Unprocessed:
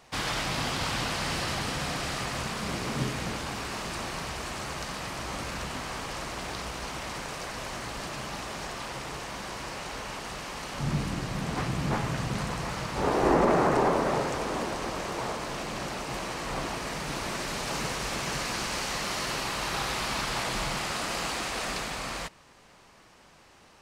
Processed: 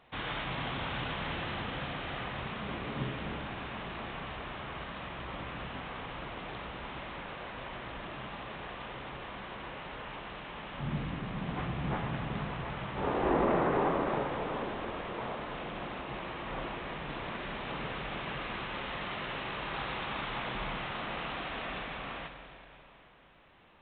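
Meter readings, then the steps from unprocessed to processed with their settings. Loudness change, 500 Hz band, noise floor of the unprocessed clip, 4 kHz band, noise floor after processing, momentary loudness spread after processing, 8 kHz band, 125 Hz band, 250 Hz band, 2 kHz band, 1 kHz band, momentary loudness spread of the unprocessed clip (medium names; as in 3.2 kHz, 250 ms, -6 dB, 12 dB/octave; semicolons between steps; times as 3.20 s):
-6.0 dB, -5.0 dB, -56 dBFS, -8.5 dB, -54 dBFS, 9 LU, under -40 dB, -5.0 dB, -5.0 dB, -5.0 dB, -5.0 dB, 8 LU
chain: Schroeder reverb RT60 3 s, combs from 31 ms, DRR 6 dB; trim -6 dB; A-law 64 kbps 8 kHz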